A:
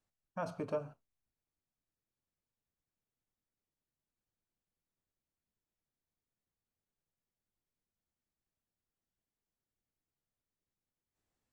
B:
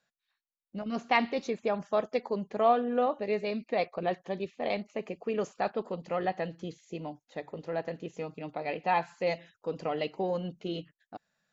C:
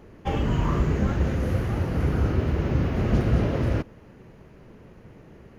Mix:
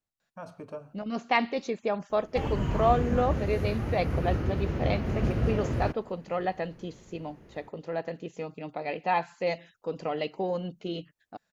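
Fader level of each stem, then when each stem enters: -3.5 dB, +1.0 dB, -5.5 dB; 0.00 s, 0.20 s, 2.10 s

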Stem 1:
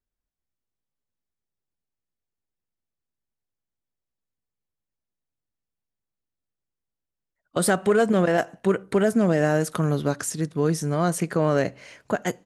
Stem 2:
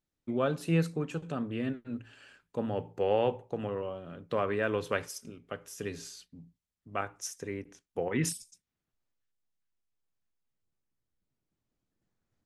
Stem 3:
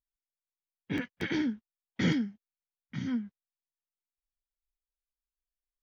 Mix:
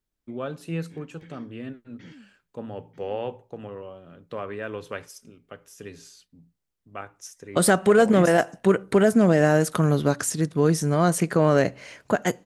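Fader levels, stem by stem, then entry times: +2.5 dB, -3.0 dB, -19.5 dB; 0.00 s, 0.00 s, 0.00 s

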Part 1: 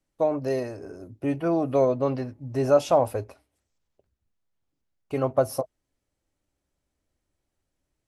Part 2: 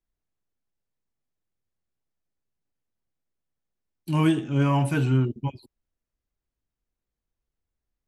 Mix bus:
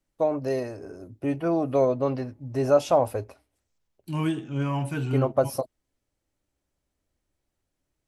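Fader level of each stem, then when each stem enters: -0.5 dB, -5.5 dB; 0.00 s, 0.00 s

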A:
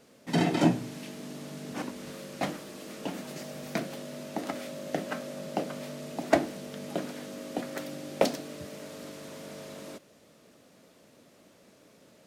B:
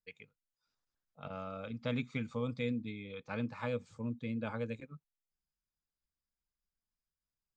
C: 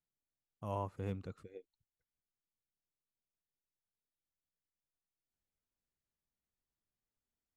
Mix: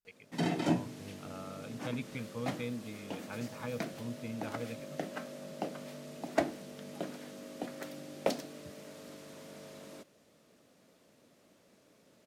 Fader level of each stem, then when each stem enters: -6.5 dB, -3.5 dB, -11.0 dB; 0.05 s, 0.00 s, 0.00 s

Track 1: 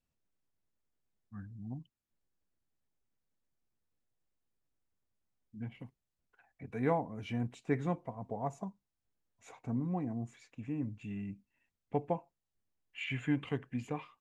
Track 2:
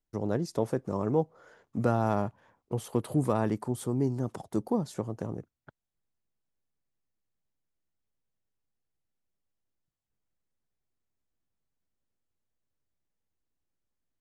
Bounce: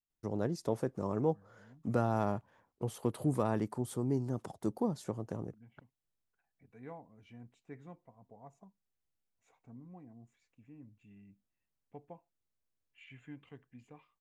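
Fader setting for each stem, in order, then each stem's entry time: -17.0 dB, -4.5 dB; 0.00 s, 0.10 s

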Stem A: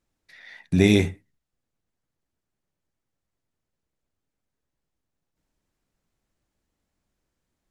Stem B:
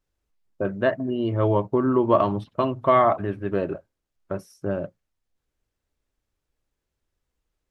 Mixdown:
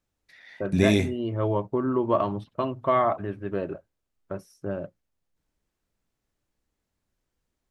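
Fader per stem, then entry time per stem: -3.5 dB, -4.5 dB; 0.00 s, 0.00 s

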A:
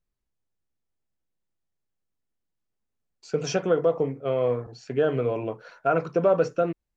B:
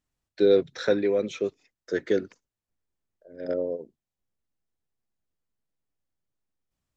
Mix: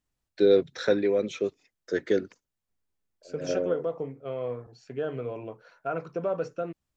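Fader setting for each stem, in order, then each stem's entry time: -8.5 dB, -0.5 dB; 0.00 s, 0.00 s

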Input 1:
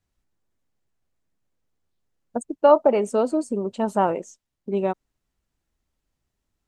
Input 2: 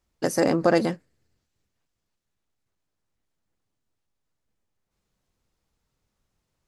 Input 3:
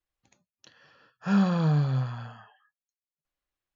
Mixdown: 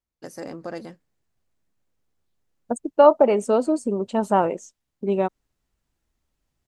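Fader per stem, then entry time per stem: +1.5 dB, -14.0 dB, mute; 0.35 s, 0.00 s, mute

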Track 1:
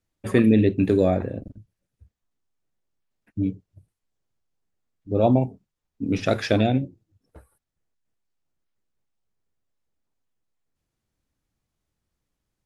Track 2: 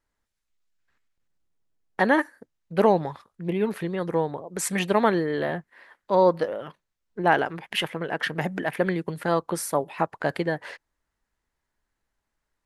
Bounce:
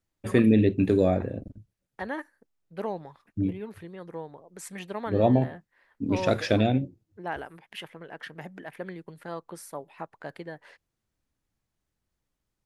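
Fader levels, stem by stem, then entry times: -2.5 dB, -13.5 dB; 0.00 s, 0.00 s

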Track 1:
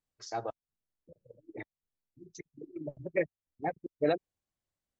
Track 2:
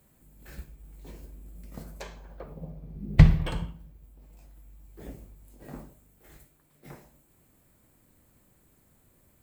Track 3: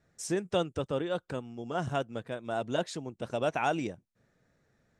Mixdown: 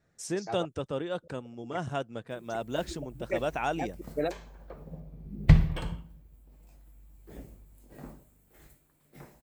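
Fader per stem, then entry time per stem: -2.5 dB, -3.0 dB, -1.5 dB; 0.15 s, 2.30 s, 0.00 s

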